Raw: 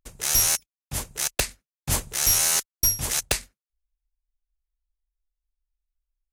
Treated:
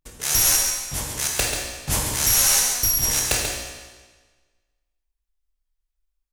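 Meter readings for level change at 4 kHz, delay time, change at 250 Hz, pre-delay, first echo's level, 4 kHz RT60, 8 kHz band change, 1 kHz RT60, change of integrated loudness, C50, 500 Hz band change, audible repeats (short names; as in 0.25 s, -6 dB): +4.0 dB, 0.137 s, +4.5 dB, 16 ms, -6.5 dB, 1.3 s, +4.0 dB, 1.4 s, +3.5 dB, 0.0 dB, +4.0 dB, 1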